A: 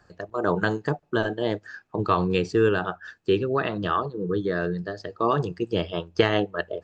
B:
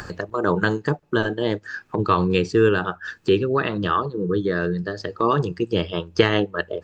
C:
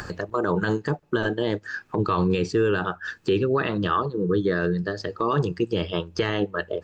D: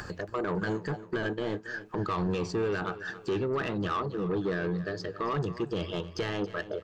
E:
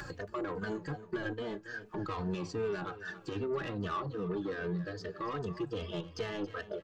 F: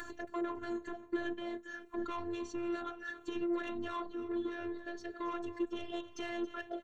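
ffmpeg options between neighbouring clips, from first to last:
-af "equalizer=f=690:w=3.7:g=-7.5,acompressor=mode=upward:threshold=-25dB:ratio=2.5,volume=4dB"
-af "alimiter=limit=-13dB:level=0:latency=1:release=13"
-af "asoftclip=type=tanh:threshold=-19.5dB,aecho=1:1:276|552|828|1104:0.178|0.0765|0.0329|0.0141,volume=-4.5dB"
-filter_complex "[0:a]alimiter=level_in=2.5dB:limit=-24dB:level=0:latency=1:release=466,volume=-2.5dB,asplit=2[a][b];[b]adelay=3.1,afreqshift=-2.5[c];[a][c]amix=inputs=2:normalize=1"
-af "afftfilt=real='hypot(re,im)*cos(PI*b)':imag='0':win_size=512:overlap=0.75,asuperstop=centerf=4900:order=4:qfactor=5,volume=2dB"

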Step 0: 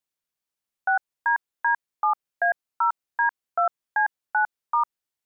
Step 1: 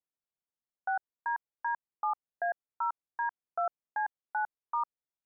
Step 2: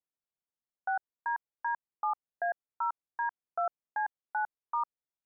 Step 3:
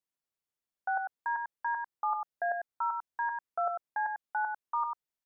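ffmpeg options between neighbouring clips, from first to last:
-af "lowpass=1.2k,volume=-7dB"
-af anull
-af "aecho=1:1:96:0.562"

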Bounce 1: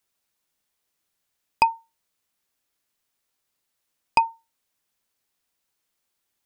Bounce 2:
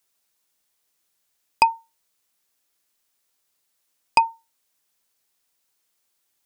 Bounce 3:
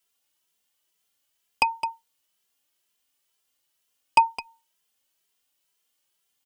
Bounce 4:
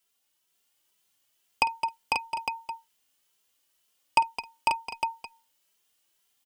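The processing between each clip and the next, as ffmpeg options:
-af "bass=f=250:g=-4,treble=f=4k:g=4,volume=2dB"
-filter_complex "[0:a]equalizer=f=3k:w=6:g=9,aecho=1:1:213:0.266,asplit=2[a][b];[b]adelay=2.6,afreqshift=2.1[c];[a][c]amix=inputs=2:normalize=1"
-filter_complex "[0:a]acompressor=threshold=-21dB:ratio=2,asplit=2[a][b];[b]aecho=0:1:51|499|538|857:0.133|0.668|0.501|0.422[c];[a][c]amix=inputs=2:normalize=0"

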